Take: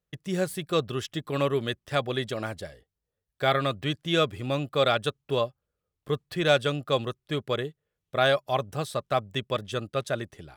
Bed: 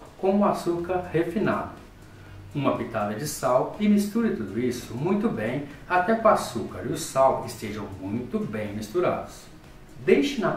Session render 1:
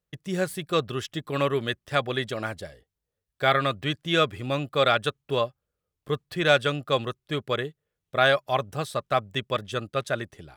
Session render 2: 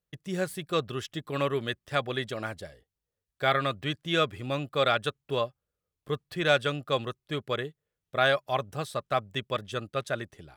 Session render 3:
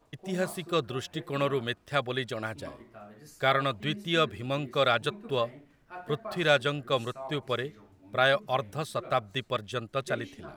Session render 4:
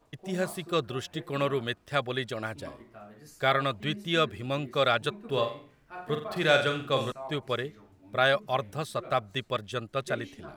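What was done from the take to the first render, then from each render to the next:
dynamic equaliser 1,700 Hz, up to +5 dB, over −38 dBFS, Q 0.86
level −3.5 dB
mix in bed −21 dB
0:05.27–0:07.12: flutter between parallel walls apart 7.6 metres, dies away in 0.42 s

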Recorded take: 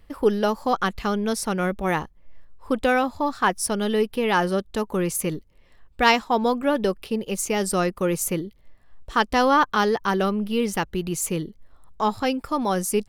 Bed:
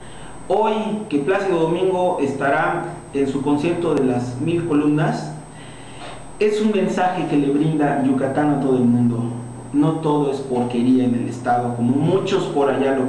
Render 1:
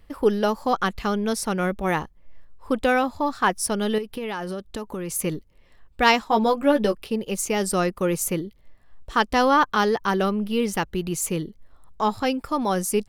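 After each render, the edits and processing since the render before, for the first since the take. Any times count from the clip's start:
0:03.98–0:05.16: downward compressor 10 to 1, threshold −26 dBFS
0:06.28–0:06.95: double-tracking delay 14 ms −4.5 dB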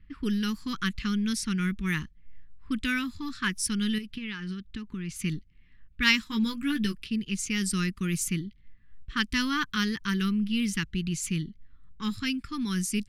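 low-pass that shuts in the quiet parts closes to 1,900 Hz, open at −18.5 dBFS
Chebyshev band-stop filter 210–2,000 Hz, order 2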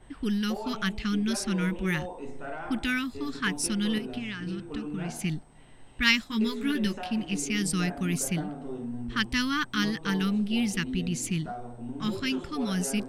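mix in bed −20 dB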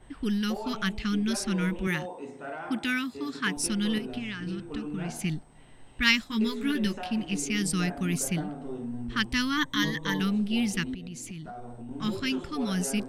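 0:01.87–0:03.57: high-pass filter 150 Hz
0:09.57–0:10.20: EQ curve with evenly spaced ripples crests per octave 1.1, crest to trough 13 dB
0:10.94–0:11.91: downward compressor 8 to 1, threshold −36 dBFS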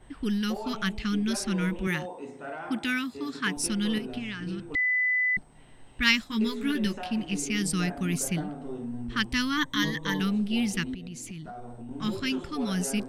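0:04.75–0:05.37: beep over 2,000 Hz −22 dBFS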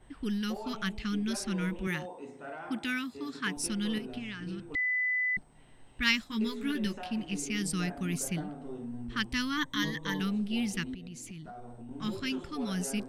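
level −4.5 dB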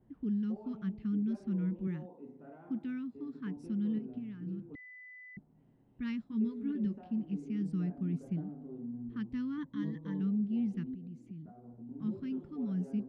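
resonant band-pass 200 Hz, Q 1.3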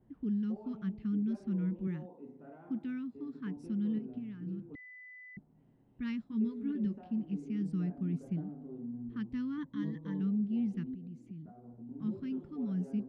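no processing that can be heard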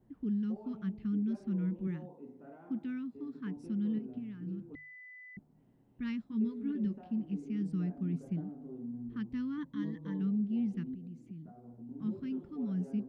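mains-hum notches 50/100/150 Hz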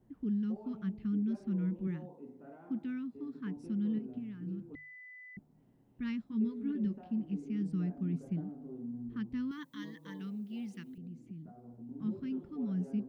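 0:09.51–0:10.98: spectral tilt +4 dB per octave

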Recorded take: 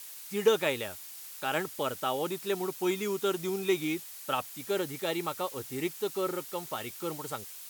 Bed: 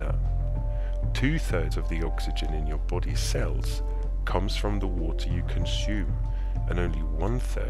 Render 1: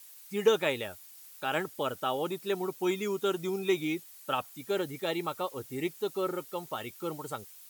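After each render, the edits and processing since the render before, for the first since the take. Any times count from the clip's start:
broadband denoise 9 dB, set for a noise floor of −46 dBFS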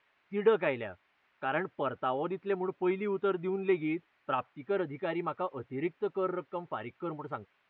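low-pass filter 2,300 Hz 24 dB per octave
notch filter 490 Hz, Q 12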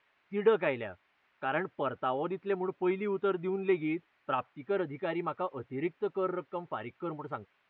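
no processing that can be heard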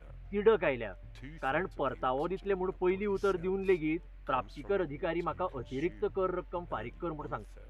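mix in bed −22.5 dB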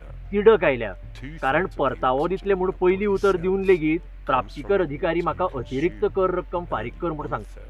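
level +10.5 dB

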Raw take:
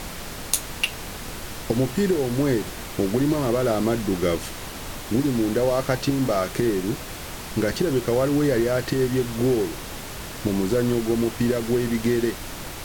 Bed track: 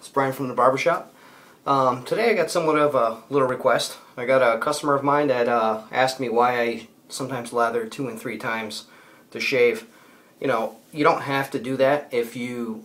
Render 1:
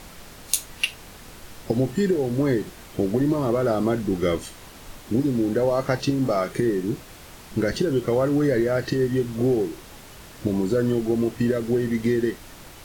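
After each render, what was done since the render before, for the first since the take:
noise reduction from a noise print 9 dB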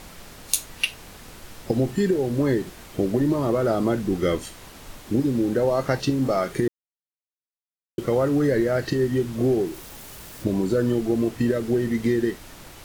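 0:06.68–0:07.98: silence
0:09.66–0:10.44: spike at every zero crossing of −39 dBFS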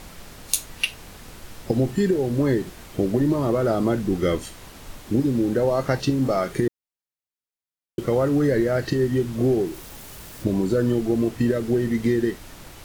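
low-shelf EQ 170 Hz +3 dB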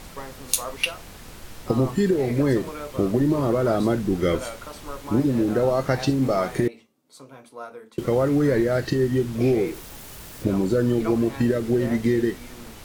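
mix in bed track −16.5 dB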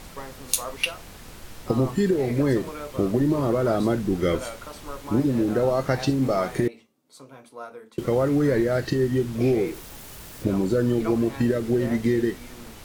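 level −1 dB

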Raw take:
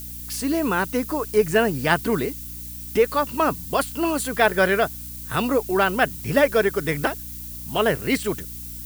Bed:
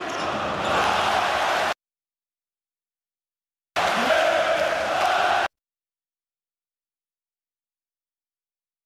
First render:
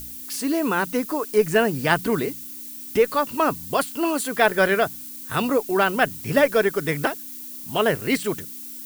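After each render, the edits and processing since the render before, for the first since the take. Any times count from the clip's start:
hum removal 60 Hz, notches 3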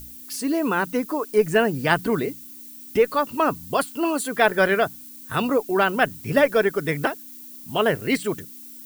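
broadband denoise 6 dB, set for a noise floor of −37 dBFS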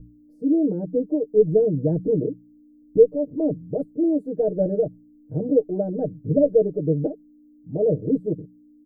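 elliptic low-pass filter 560 Hz, stop band 50 dB
comb filter 6.5 ms, depth 97%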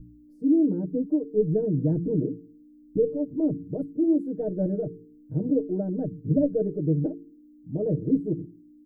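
flat-topped bell 590 Hz −8.5 dB 1.1 octaves
hum removal 56.43 Hz, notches 8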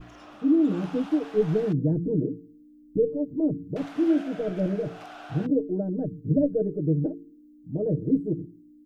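mix in bed −22.5 dB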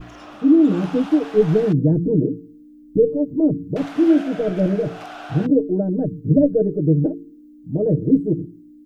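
level +7.5 dB

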